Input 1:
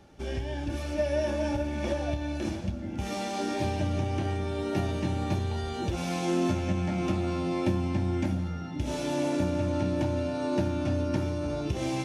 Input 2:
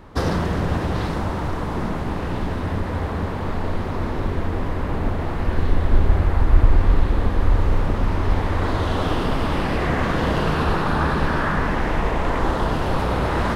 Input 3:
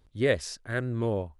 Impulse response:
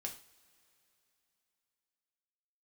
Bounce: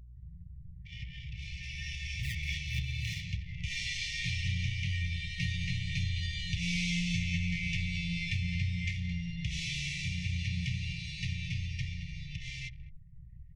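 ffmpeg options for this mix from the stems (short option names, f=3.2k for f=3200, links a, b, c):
-filter_complex "[0:a]acrossover=split=230 7900:gain=0.158 1 0.0708[a][b][c];[a][b][c]amix=inputs=3:normalize=0,bandreject=f=1.9k:w=20,dynaudnorm=f=190:g=13:m=7dB,adelay=650,volume=2.5dB,asplit=3[d][e][f];[e]volume=-11.5dB[g];[f]volume=-10.5dB[h];[1:a]aeval=exprs='val(0)+0.0398*(sin(2*PI*60*n/s)+sin(2*PI*2*60*n/s)/2+sin(2*PI*3*60*n/s)/3+sin(2*PI*4*60*n/s)/4+sin(2*PI*5*60*n/s)/5)':c=same,aeval=exprs='(tanh(11.2*val(0)+0.1)-tanh(0.1))/11.2':c=same,alimiter=limit=-23.5dB:level=0:latency=1:release=42,volume=-16dB,asplit=2[i][j];[j]volume=-9.5dB[k];[2:a]acrusher=samples=22:mix=1:aa=0.000001:lfo=1:lforange=22:lforate=3.8,adelay=2000,volume=-6.5dB,asplit=2[l][m];[m]volume=-15.5dB[n];[3:a]atrim=start_sample=2205[o];[g][o]afir=irnorm=-1:irlink=0[p];[h][k][n]amix=inputs=3:normalize=0,aecho=0:1:218:1[q];[d][i][l][p][q]amix=inputs=5:normalize=0,anlmdn=1.58,afftfilt=real='re*(1-between(b*sr/4096,180,1800))':imag='im*(1-between(b*sr/4096,180,1800))':win_size=4096:overlap=0.75,highshelf=f=3.5k:g=-10.5"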